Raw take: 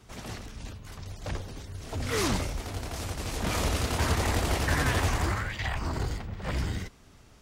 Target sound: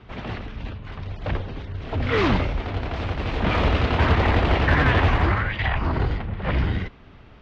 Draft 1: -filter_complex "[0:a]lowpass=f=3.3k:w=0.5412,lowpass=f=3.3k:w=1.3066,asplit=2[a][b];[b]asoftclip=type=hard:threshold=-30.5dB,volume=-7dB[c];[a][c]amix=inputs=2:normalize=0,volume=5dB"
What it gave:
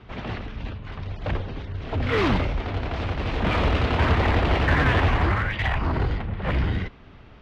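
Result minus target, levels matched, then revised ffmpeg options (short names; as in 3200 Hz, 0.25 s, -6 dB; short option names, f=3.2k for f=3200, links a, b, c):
hard clip: distortion +17 dB
-filter_complex "[0:a]lowpass=f=3.3k:w=0.5412,lowpass=f=3.3k:w=1.3066,asplit=2[a][b];[b]asoftclip=type=hard:threshold=-19.5dB,volume=-7dB[c];[a][c]amix=inputs=2:normalize=0,volume=5dB"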